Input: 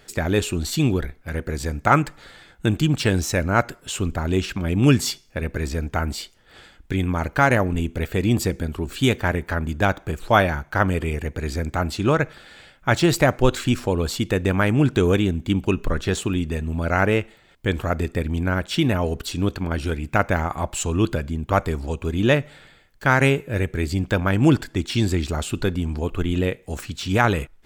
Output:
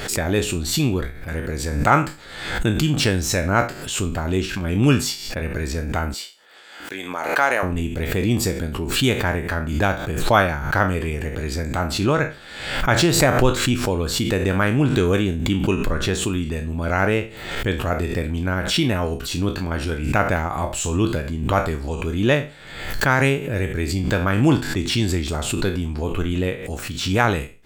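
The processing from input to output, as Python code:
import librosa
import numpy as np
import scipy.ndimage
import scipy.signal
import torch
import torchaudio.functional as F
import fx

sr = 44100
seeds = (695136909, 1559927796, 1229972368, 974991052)

y = fx.spec_trails(x, sr, decay_s=0.32)
y = fx.highpass(y, sr, hz=480.0, slope=12, at=(6.14, 7.63))
y = fx.pre_swell(y, sr, db_per_s=58.0)
y = y * librosa.db_to_amplitude(-1.0)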